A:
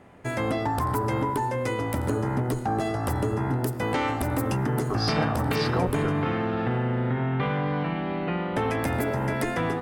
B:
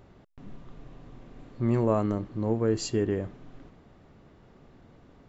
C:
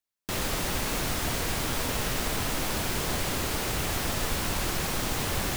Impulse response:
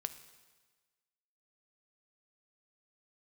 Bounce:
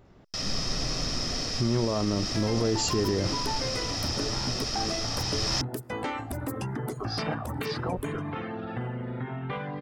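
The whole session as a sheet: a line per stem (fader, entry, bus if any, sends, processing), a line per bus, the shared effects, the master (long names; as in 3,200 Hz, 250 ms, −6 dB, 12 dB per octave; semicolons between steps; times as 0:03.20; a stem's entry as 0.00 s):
−4.5 dB, 2.10 s, no send, reverb reduction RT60 1.2 s
−2.5 dB, 0.00 s, no send, automatic gain control gain up to 16.5 dB; brickwall limiter −10.5 dBFS, peak gain reduction 9 dB
+2.0 dB, 0.05 s, no send, low-pass with resonance 5,300 Hz, resonance Q 12; comb filter 1.6 ms, depth 48%; automatic ducking −11 dB, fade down 0.30 s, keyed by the second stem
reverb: not used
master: brickwall limiter −17 dBFS, peak gain reduction 6.5 dB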